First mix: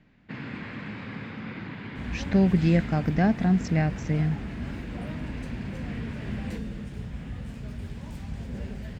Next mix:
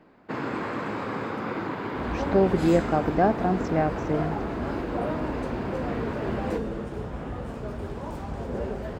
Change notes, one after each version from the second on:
speech -6.5 dB; first sound: remove low-pass 3.8 kHz 12 dB/octave; master: add high-order bell 650 Hz +14 dB 2.5 oct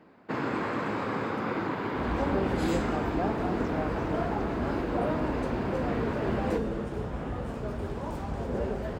speech -11.0 dB

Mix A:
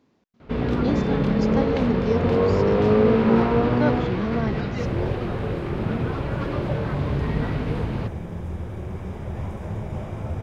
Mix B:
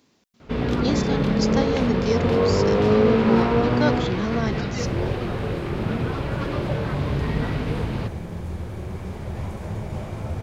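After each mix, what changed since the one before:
speech: add treble shelf 2.6 kHz +9.5 dB; second sound: remove Butterworth band-stop 4.3 kHz, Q 5.8; master: add treble shelf 3.2 kHz +7.5 dB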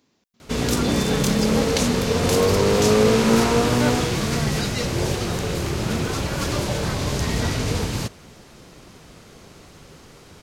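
speech -3.5 dB; first sound: remove distance through air 390 m; second sound: entry -2.85 s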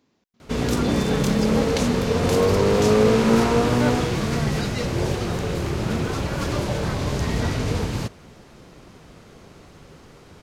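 master: add treble shelf 3.2 kHz -7.5 dB

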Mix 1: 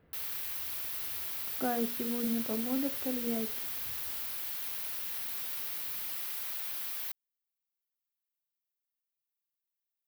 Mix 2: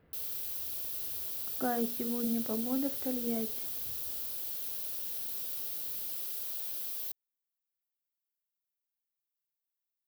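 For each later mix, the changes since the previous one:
background: add graphic EQ 125/500/1000/2000 Hz -4/+5/-9/-12 dB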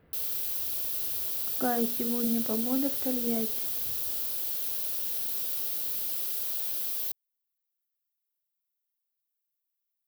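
speech +3.5 dB; background +6.0 dB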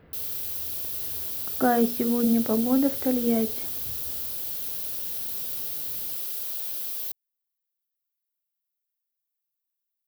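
speech +7.5 dB

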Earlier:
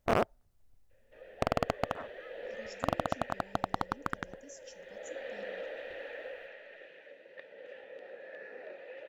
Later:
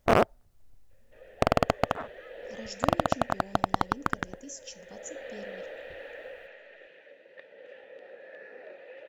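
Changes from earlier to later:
speech +10.0 dB; first sound +6.5 dB

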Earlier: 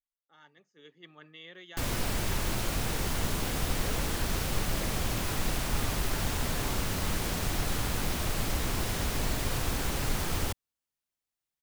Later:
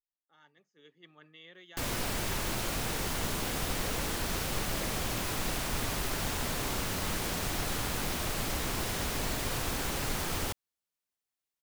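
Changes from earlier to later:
speech -4.5 dB; background: add bass shelf 160 Hz -6.5 dB

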